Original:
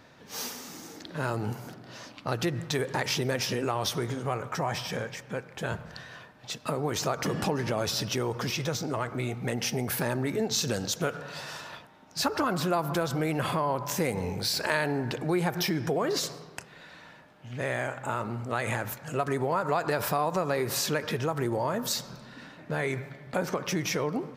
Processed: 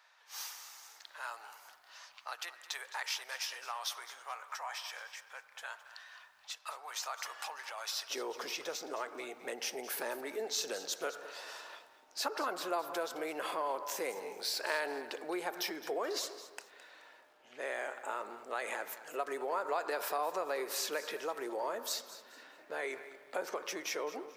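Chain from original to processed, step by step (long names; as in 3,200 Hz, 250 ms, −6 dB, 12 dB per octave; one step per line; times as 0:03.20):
high-pass filter 850 Hz 24 dB per octave, from 0:08.10 370 Hz
feedback echo at a low word length 214 ms, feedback 35%, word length 9 bits, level −14.5 dB
level −7 dB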